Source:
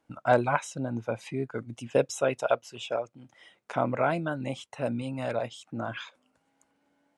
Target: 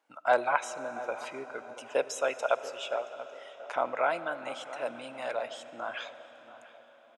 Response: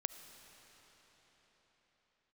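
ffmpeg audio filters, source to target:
-filter_complex "[0:a]highpass=620,asplit=2[link_01][link_02];[link_02]adelay=685,lowpass=frequency=1400:poles=1,volume=-14dB,asplit=2[link_03][link_04];[link_04]adelay=685,lowpass=frequency=1400:poles=1,volume=0.36,asplit=2[link_05][link_06];[link_06]adelay=685,lowpass=frequency=1400:poles=1,volume=0.36[link_07];[link_01][link_03][link_05][link_07]amix=inputs=4:normalize=0,asplit=2[link_08][link_09];[1:a]atrim=start_sample=2205,highshelf=frequency=5800:gain=-6[link_10];[link_09][link_10]afir=irnorm=-1:irlink=0,volume=7dB[link_11];[link_08][link_11]amix=inputs=2:normalize=0,volume=-8.5dB"

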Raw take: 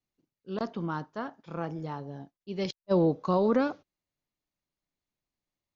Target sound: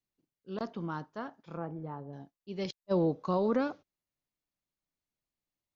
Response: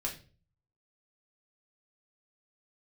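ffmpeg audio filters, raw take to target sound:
-filter_complex "[0:a]asettb=1/sr,asplit=3[link_01][link_02][link_03];[link_01]atrim=end=1.574[link_04];[link_02]atrim=start=1.57:end=2.13,asetpts=PTS-STARTPTS,afade=type=in:duration=0.004:curve=qsin,afade=type=out:start_time=0.556:duration=0.004:curve=qsin,lowpass=1400[link_05];[link_03]atrim=start=2.126[link_06];[link_04][link_05]acrossfade=duration=0.004:curve1=hsin:curve2=qsin[link_07];[link_07][link_06]acrossfade=duration=0.004:curve1=qsin:curve2=hsin,volume=-4dB"

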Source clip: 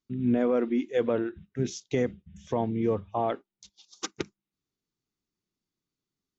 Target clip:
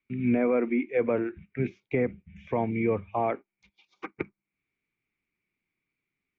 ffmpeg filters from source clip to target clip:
ffmpeg -i in.wav -filter_complex "[0:a]acrossover=split=250|1000|1300[link_01][link_02][link_03][link_04];[link_04]acompressor=threshold=-58dB:ratio=6[link_05];[link_01][link_02][link_03][link_05]amix=inputs=4:normalize=0,lowpass=frequency=2300:width_type=q:width=14" out.wav

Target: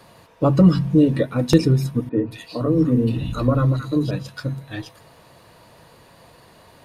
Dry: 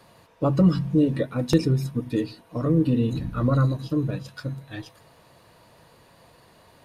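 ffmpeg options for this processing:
ffmpeg -i in.wav -filter_complex "[0:a]asettb=1/sr,asplit=3[link_01][link_02][link_03];[link_01]atrim=end=2.094[link_04];[link_02]atrim=start=2.09:end=4.11,asetpts=PTS-STARTPTS,afade=type=in:duration=0.004:curve=qsin,afade=type=out:start_time=2.016:duration=0.004:curve=qsin,acrossover=split=190|1600[link_05][link_06][link_07];[link_05]adelay=40[link_08];[link_07]adelay=220[link_09];[link_08][link_06][link_09]amix=inputs=3:normalize=0,atrim=end_sample=89082[link_10];[link_03]atrim=start=4.106[link_11];[link_04][link_10]acrossfade=duration=0.004:curve1=hsin:curve2=qsin[link_12];[link_12][link_11]acrossfade=duration=0.004:curve1=qsin:curve2=hsin,volume=5dB" out.wav

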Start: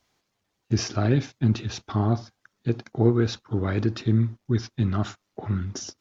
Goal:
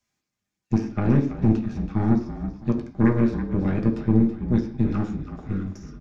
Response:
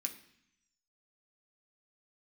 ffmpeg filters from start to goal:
-filter_complex "[0:a]lowshelf=frequency=140:gain=6.5,acrossover=split=250|2100[link_01][link_02][link_03];[link_03]acompressor=threshold=-48dB:ratio=16[link_04];[link_01][link_02][link_04]amix=inputs=3:normalize=0,aeval=exprs='0.596*(cos(1*acos(clip(val(0)/0.596,-1,1)))-cos(1*PI/2))+0.106*(cos(6*acos(clip(val(0)/0.596,-1,1)))-cos(6*PI/2))+0.0473*(cos(7*acos(clip(val(0)/0.596,-1,1)))-cos(7*PI/2))':channel_layout=same,asplit=6[link_05][link_06][link_07][link_08][link_09][link_10];[link_06]adelay=328,afreqshift=-43,volume=-11dB[link_11];[link_07]adelay=656,afreqshift=-86,volume=-17.7dB[link_12];[link_08]adelay=984,afreqshift=-129,volume=-24.5dB[link_13];[link_09]adelay=1312,afreqshift=-172,volume=-31.2dB[link_14];[link_10]adelay=1640,afreqshift=-215,volume=-38dB[link_15];[link_05][link_11][link_12][link_13][link_14][link_15]amix=inputs=6:normalize=0[link_16];[1:a]atrim=start_sample=2205,afade=type=out:start_time=0.24:duration=0.01,atrim=end_sample=11025[link_17];[link_16][link_17]afir=irnorm=-1:irlink=0"

